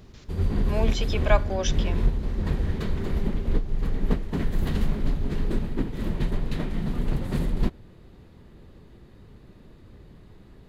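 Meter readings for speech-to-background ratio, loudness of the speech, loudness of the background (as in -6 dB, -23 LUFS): -0.5 dB, -29.5 LUFS, -29.0 LUFS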